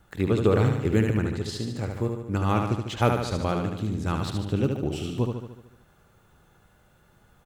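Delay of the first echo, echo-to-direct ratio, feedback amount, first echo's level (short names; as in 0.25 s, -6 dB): 74 ms, -3.5 dB, 57%, -5.0 dB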